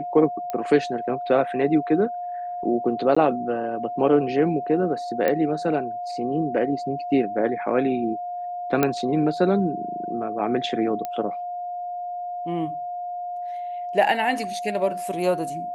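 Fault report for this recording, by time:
tone 710 Hz -28 dBFS
0.5 pop -17 dBFS
3.15–3.17 gap
5.28 pop -10 dBFS
8.83 pop -6 dBFS
11.05 pop -16 dBFS

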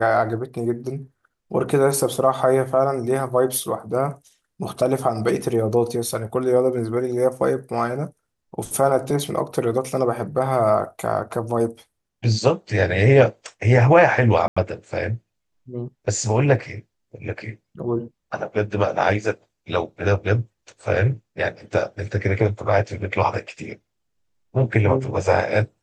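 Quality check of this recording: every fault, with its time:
14.48–14.56 gap 85 ms

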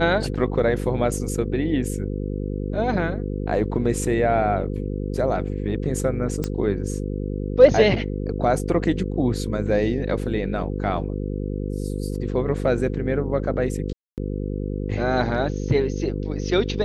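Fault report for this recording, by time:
buzz 50 Hz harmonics 10 -27 dBFS
6.44 pop -12 dBFS
13.93–14.18 gap 0.248 s

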